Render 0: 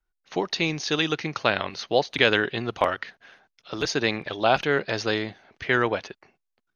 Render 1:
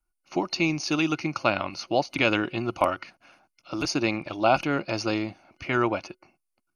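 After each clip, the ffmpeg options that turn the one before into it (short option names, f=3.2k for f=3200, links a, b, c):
-af "superequalizer=6b=1.58:7b=0.355:11b=0.282:13b=0.316:16b=2.82"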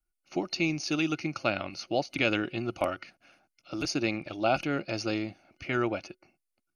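-af "equalizer=f=1k:t=o:w=0.42:g=-11,volume=-3.5dB"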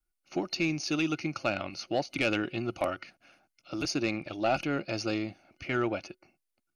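-af "asoftclip=type=tanh:threshold=-16.5dB"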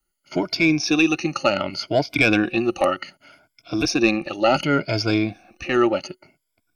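-af "afftfilt=real='re*pow(10,15/40*sin(2*PI*(1.7*log(max(b,1)*sr/1024/100)/log(2)-(0.67)*(pts-256)/sr)))':imag='im*pow(10,15/40*sin(2*PI*(1.7*log(max(b,1)*sr/1024/100)/log(2)-(0.67)*(pts-256)/sr)))':win_size=1024:overlap=0.75,volume=8dB"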